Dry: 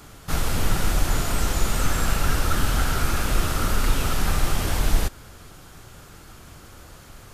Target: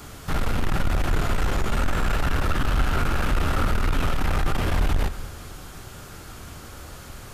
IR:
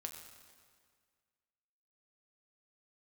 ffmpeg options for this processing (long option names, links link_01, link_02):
-filter_complex "[0:a]acrossover=split=3400[link_01][link_02];[link_02]acompressor=threshold=-45dB:ratio=4:attack=1:release=60[link_03];[link_01][link_03]amix=inputs=2:normalize=0,asoftclip=type=tanh:threshold=-21dB,asplit=2[link_04][link_05];[1:a]atrim=start_sample=2205[link_06];[link_05][link_06]afir=irnorm=-1:irlink=0,volume=0.5dB[link_07];[link_04][link_07]amix=inputs=2:normalize=0"